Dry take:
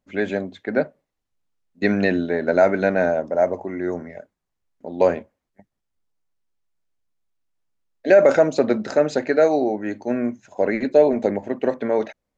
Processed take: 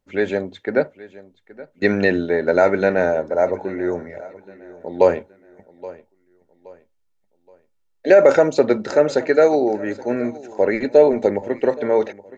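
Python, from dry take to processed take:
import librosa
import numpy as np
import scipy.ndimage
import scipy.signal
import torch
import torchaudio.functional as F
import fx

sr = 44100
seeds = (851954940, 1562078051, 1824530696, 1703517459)

p1 = x + 0.34 * np.pad(x, (int(2.2 * sr / 1000.0), 0))[:len(x)]
p2 = p1 + fx.echo_feedback(p1, sr, ms=823, feedback_pct=36, wet_db=-19.5, dry=0)
y = F.gain(torch.from_numpy(p2), 2.0).numpy()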